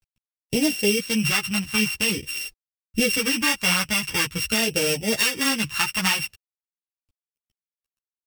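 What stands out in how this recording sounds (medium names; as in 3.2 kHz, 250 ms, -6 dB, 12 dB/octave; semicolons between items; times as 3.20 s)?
a buzz of ramps at a fixed pitch in blocks of 16 samples; phasing stages 2, 0.46 Hz, lowest notch 480–1100 Hz; a quantiser's noise floor 12-bit, dither none; a shimmering, thickened sound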